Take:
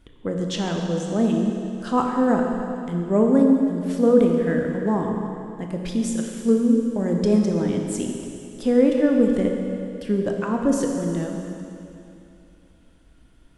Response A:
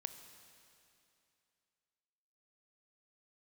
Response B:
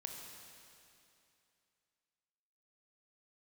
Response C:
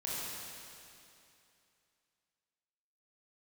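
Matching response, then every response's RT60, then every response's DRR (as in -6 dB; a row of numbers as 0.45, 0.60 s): B; 2.7, 2.7, 2.7 s; 9.0, 1.5, -7.5 dB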